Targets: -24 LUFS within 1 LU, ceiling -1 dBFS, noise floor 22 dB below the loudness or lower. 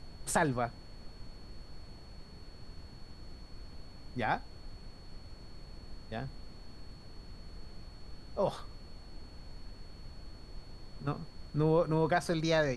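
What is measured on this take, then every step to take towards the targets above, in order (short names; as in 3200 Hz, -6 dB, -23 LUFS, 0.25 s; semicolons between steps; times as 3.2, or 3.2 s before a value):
steady tone 4400 Hz; tone level -59 dBFS; noise floor -52 dBFS; noise floor target -56 dBFS; loudness -33.5 LUFS; peak -15.0 dBFS; loudness target -24.0 LUFS
-> notch 4400 Hz, Q 30; noise print and reduce 6 dB; gain +9.5 dB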